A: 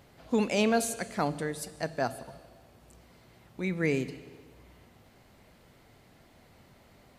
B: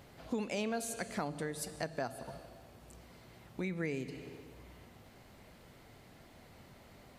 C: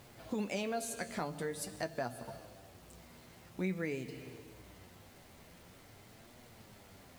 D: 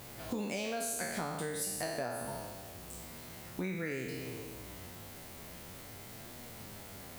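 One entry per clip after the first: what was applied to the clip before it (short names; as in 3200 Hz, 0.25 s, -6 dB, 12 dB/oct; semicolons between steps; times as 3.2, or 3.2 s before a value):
compressor 4:1, threshold -36 dBFS, peak gain reduction 12.5 dB; gain +1 dB
bit-crush 10-bit; flange 0.47 Hz, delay 8.1 ms, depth 4.7 ms, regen +46%; gain +3.5 dB
spectral trails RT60 0.99 s; high shelf 9400 Hz +10 dB; compressor 3:1, threshold -40 dBFS, peak gain reduction 8.5 dB; gain +4.5 dB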